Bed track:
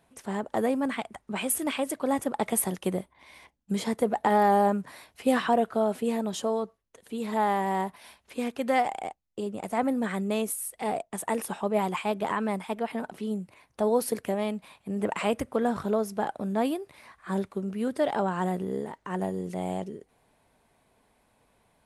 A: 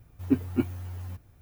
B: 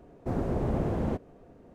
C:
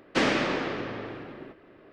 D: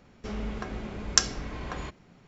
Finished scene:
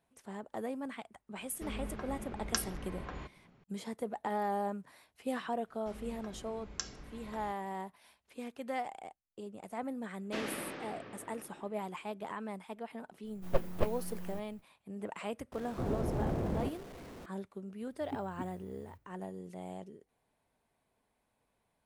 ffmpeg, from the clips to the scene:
-filter_complex "[4:a]asplit=2[a][b];[1:a]asplit=2[c][d];[0:a]volume=-12.5dB[e];[a]aemphasis=mode=reproduction:type=50fm[f];[b]alimiter=limit=-4.5dB:level=0:latency=1:release=52[g];[3:a]aecho=1:1:139:0.398[h];[c]aeval=exprs='abs(val(0))':c=same[i];[2:a]aeval=exprs='val(0)+0.5*0.0106*sgn(val(0))':c=same[j];[f]atrim=end=2.27,asetpts=PTS-STARTPTS,volume=-7.5dB,afade=t=in:d=0.004:c=hsin,afade=t=out:st=2.266:d=0.004:c=hsin,adelay=1370[k];[g]atrim=end=2.27,asetpts=PTS-STARTPTS,volume=-14.5dB,afade=t=in:d=0.1,afade=t=out:st=2.17:d=0.1,adelay=5620[l];[h]atrim=end=1.92,asetpts=PTS-STARTPTS,volume=-15.5dB,afade=t=in:d=0.004:c=hsin,afade=t=out:st=1.916:d=0.004:c=hsin,adelay=10170[m];[i]atrim=end=1.41,asetpts=PTS-STARTPTS,volume=-2.5dB,afade=t=in:d=0.05,afade=t=out:st=1.36:d=0.05,adelay=13230[n];[j]atrim=end=1.74,asetpts=PTS-STARTPTS,volume=-6dB,afade=t=in:d=0.004:c=hsin,afade=t=out:st=1.736:d=0.004:c=hsin,adelay=15520[o];[d]atrim=end=1.41,asetpts=PTS-STARTPTS,volume=-18dB,afade=t=in:d=0.004:c=hsin,afade=t=out:st=1.406:d=0.004:c=hsin,adelay=17810[p];[e][k][l][m][n][o][p]amix=inputs=7:normalize=0"

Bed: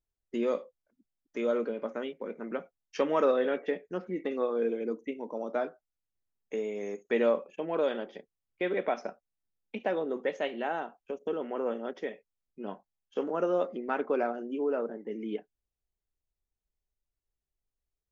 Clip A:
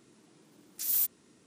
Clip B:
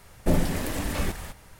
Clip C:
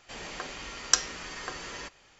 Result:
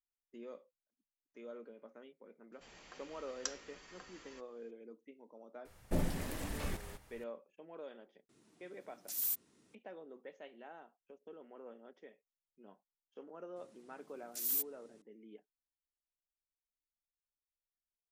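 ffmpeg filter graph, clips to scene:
-filter_complex "[1:a]asplit=2[a][b];[0:a]volume=-20dB[c];[3:a]atrim=end=2.19,asetpts=PTS-STARTPTS,volume=-17.5dB,afade=t=in:d=0.004:c=hsin,afade=t=out:st=2.186:d=0.004:c=hsin,adelay=2520[d];[2:a]atrim=end=1.59,asetpts=PTS-STARTPTS,volume=-11.5dB,afade=t=in:d=0.004:c=hsin,afade=t=out:st=1.586:d=0.004:c=hsin,adelay=249165S[e];[a]atrim=end=1.46,asetpts=PTS-STARTPTS,volume=-7.5dB,afade=t=in:d=0.004:c=hsin,afade=t=out:st=1.456:d=0.004:c=hsin,adelay=8290[f];[b]atrim=end=1.46,asetpts=PTS-STARTPTS,volume=-6.5dB,afade=t=in:d=0.004:c=hsin,afade=t=out:st=1.456:d=0.004:c=hsin,adelay=13560[g];[c][d][e][f][g]amix=inputs=5:normalize=0"

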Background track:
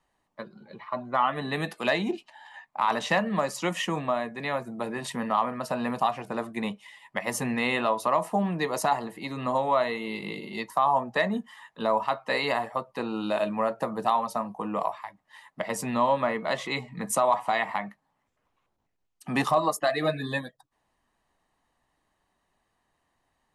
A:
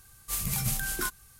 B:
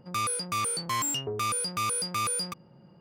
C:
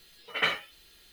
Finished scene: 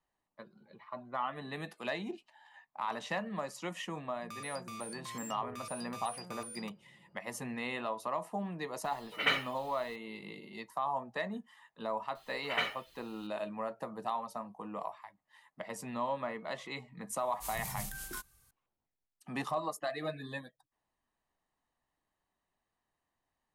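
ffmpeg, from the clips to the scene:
-filter_complex "[3:a]asplit=2[a][b];[0:a]volume=-11.5dB[c];[2:a]acompressor=threshold=-33dB:ratio=6:attack=3.2:release=140:knee=1:detection=peak,atrim=end=3,asetpts=PTS-STARTPTS,volume=-11.5dB,afade=t=in:d=0.004:c=hsin,afade=t=out:st=2.996:d=0.004:c=hsin,adelay=4160[d];[a]atrim=end=1.12,asetpts=PTS-STARTPTS,volume=-2.5dB,afade=t=in:d=0.004:c=hsin,afade=t=out:st=1.116:d=0.004:c=hsin,adelay=8840[e];[b]atrim=end=1.12,asetpts=PTS-STARTPTS,volume=-6.5dB,afade=t=in:d=0.004:c=hsin,afade=t=out:st=1.116:d=0.004:c=hsin,adelay=12150[f];[1:a]atrim=end=1.39,asetpts=PTS-STARTPTS,volume=-11.5dB,afade=t=in:d=0.004:c=hsin,afade=t=out:st=1.386:d=0.004:c=hsin,adelay=17120[g];[c][d][e][f][g]amix=inputs=5:normalize=0"

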